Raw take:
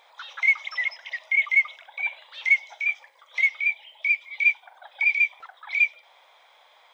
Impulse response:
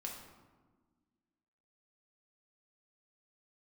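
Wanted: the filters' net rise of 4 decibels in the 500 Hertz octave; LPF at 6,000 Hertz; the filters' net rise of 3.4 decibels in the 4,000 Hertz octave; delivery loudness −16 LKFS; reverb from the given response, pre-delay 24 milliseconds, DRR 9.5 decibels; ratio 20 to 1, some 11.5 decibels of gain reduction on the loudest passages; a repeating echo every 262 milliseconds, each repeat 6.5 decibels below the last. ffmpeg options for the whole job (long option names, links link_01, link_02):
-filter_complex "[0:a]lowpass=6000,equalizer=frequency=500:width_type=o:gain=5.5,equalizer=frequency=4000:width_type=o:gain=5,acompressor=threshold=-25dB:ratio=20,aecho=1:1:262|524|786|1048|1310|1572:0.473|0.222|0.105|0.0491|0.0231|0.0109,asplit=2[link_01][link_02];[1:a]atrim=start_sample=2205,adelay=24[link_03];[link_02][link_03]afir=irnorm=-1:irlink=0,volume=-8dB[link_04];[link_01][link_04]amix=inputs=2:normalize=0,volume=12.5dB"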